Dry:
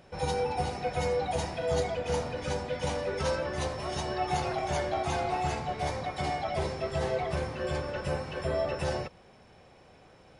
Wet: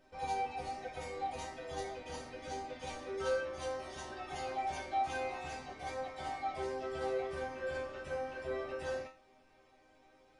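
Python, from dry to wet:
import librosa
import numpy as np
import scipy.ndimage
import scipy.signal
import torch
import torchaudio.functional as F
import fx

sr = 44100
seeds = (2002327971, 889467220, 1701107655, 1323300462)

y = fx.resonator_bank(x, sr, root=60, chord='minor', decay_s=0.32)
y = F.gain(torch.from_numpy(y), 9.5).numpy()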